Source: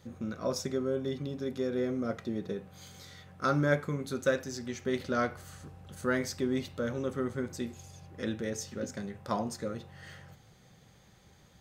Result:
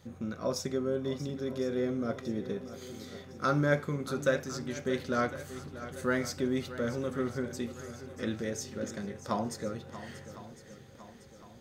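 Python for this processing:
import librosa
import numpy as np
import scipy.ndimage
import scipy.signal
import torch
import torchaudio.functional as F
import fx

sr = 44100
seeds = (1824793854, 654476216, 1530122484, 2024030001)

y = fx.echo_swing(x, sr, ms=1057, ratio=1.5, feedback_pct=47, wet_db=-14.0)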